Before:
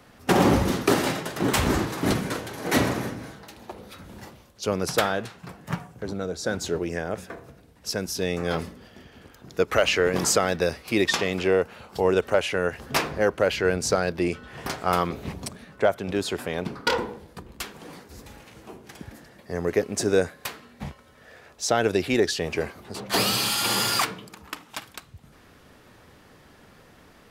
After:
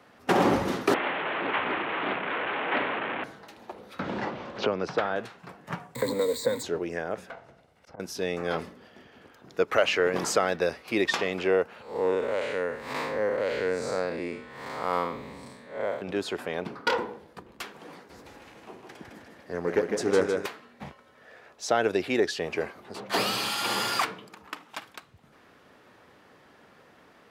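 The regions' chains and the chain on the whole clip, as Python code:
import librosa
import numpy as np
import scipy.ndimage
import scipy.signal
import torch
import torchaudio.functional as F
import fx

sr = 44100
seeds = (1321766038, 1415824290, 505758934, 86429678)

y = fx.chain(x, sr, fx.delta_mod(bps=16000, step_db=-19.0),
    fx.highpass(hz=600.0, slope=6),
    fx.doppler_dist(depth_ms=0.36), at=(0.94, 3.24))
y = fx.chain(y, sr, fx.air_absorb(metres=170.0),
    fx.band_squash(depth_pct=100), at=(3.99, 5.16))
y = fx.chain(y, sr, fx.crossing_spikes(level_db=-29.0),
    fx.ripple_eq(per_octave=1.0, db=18),
    fx.band_squash(depth_pct=100), at=(5.95, 6.63))
y = fx.chain(y, sr, fx.lower_of_two(delay_ms=1.4),
    fx.env_lowpass_down(base_hz=790.0, full_db=-27.5),
    fx.auto_swell(attack_ms=122.0), at=(7.3, 8.0))
y = fx.chain(y, sr, fx.spec_blur(span_ms=170.0),
    fx.ripple_eq(per_octave=1.0, db=7), at=(11.82, 16.02))
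y = fx.chain(y, sr, fx.echo_feedback(ms=156, feedback_pct=51, wet_db=-5),
    fx.doppler_dist(depth_ms=0.18), at=(17.94, 20.46))
y = fx.highpass(y, sr, hz=360.0, slope=6)
y = fx.high_shelf(y, sr, hz=4300.0, db=-11.5)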